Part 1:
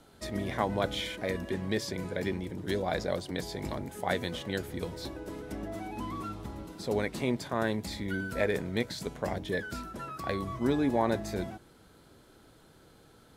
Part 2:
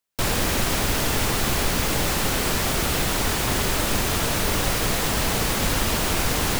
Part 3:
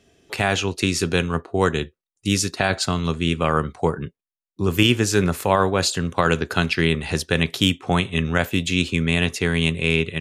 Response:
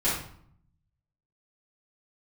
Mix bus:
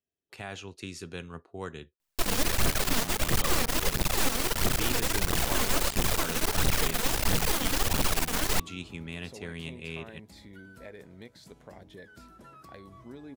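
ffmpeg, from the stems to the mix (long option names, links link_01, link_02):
-filter_complex "[0:a]acompressor=threshold=-43dB:ratio=2,adelay=2450,volume=-7.5dB[link_01];[1:a]asoftclip=type=hard:threshold=-25.5dB,aphaser=in_gain=1:out_gain=1:delay=4.6:decay=0.6:speed=1.5:type=triangular,aeval=exprs='max(val(0),0)':channel_layout=same,adelay=2000,volume=1.5dB[link_02];[2:a]agate=range=-18dB:threshold=-39dB:ratio=16:detection=peak,volume=-19dB[link_03];[link_01][link_02][link_03]amix=inputs=3:normalize=0"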